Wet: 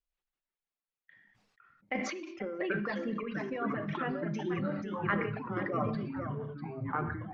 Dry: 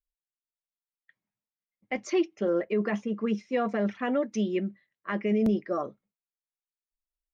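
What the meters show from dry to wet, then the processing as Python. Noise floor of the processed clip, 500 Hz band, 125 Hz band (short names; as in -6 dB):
under -85 dBFS, -7.5 dB, +2.0 dB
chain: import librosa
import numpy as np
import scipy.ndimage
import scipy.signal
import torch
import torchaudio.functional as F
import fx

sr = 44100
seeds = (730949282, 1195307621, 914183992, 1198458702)

y = scipy.signal.sosfilt(scipy.signal.cheby1(2, 1.0, 3000.0, 'lowpass', fs=sr, output='sos'), x)
y = y + 10.0 ** (-11.5 / 20.0) * np.pad(y, (int(484 * sr / 1000.0), 0))[:len(y)]
y = fx.over_compress(y, sr, threshold_db=-30.0, ratio=-0.5)
y = fx.echo_pitch(y, sr, ms=142, semitones=-5, count=3, db_per_echo=-3.0)
y = fx.dereverb_blind(y, sr, rt60_s=1.7)
y = fx.rev_gated(y, sr, seeds[0], gate_ms=260, shape='falling', drr_db=10.0)
y = fx.dynamic_eq(y, sr, hz=1400.0, q=1.6, threshold_db=-50.0, ratio=4.0, max_db=5)
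y = fx.sustainer(y, sr, db_per_s=39.0)
y = y * 10.0 ** (-4.0 / 20.0)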